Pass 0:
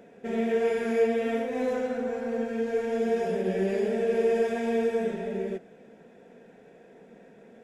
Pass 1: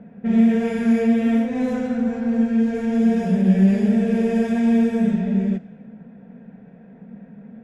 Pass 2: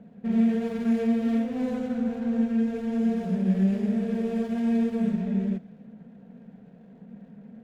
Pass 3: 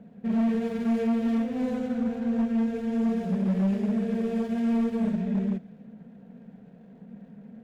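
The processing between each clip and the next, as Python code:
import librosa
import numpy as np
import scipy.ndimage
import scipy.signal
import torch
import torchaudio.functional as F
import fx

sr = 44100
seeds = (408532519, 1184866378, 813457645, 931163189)

y1 = fx.env_lowpass(x, sr, base_hz=1700.0, full_db=-23.5)
y1 = fx.low_shelf_res(y1, sr, hz=270.0, db=8.5, q=3.0)
y1 = y1 * 10.0 ** (3.0 / 20.0)
y2 = scipy.signal.medfilt(y1, 25)
y2 = fx.rider(y2, sr, range_db=10, speed_s=2.0)
y2 = y2 * 10.0 ** (-7.0 / 20.0)
y3 = np.clip(y2, -10.0 ** (-21.0 / 20.0), 10.0 ** (-21.0 / 20.0))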